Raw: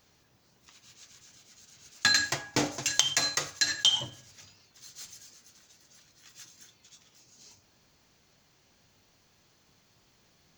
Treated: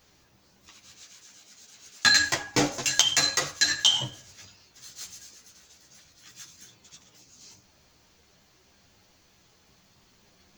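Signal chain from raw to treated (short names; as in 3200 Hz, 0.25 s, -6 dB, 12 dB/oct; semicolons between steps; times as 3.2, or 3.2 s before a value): chorus voices 6, 1.2 Hz, delay 13 ms, depth 3.3 ms; 1.03–2.05 low shelf 150 Hz -12 dB; gain +7 dB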